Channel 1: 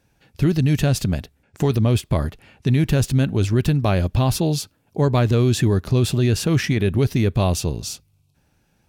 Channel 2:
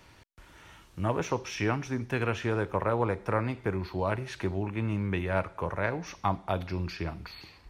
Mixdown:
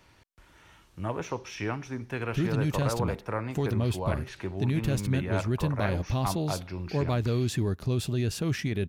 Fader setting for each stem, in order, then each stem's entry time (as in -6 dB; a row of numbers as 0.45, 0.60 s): -10.0, -3.5 dB; 1.95, 0.00 s